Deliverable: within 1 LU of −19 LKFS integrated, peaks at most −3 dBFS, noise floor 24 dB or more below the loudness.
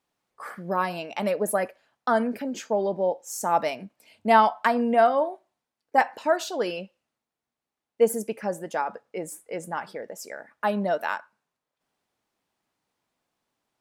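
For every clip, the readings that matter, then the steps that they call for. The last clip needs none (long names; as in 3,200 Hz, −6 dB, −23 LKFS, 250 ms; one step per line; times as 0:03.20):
integrated loudness −26.0 LKFS; sample peak −5.0 dBFS; target loudness −19.0 LKFS
→ level +7 dB
brickwall limiter −3 dBFS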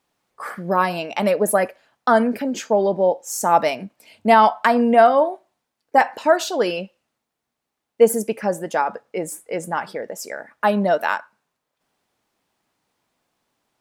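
integrated loudness −19.5 LKFS; sample peak −3.0 dBFS; background noise floor −81 dBFS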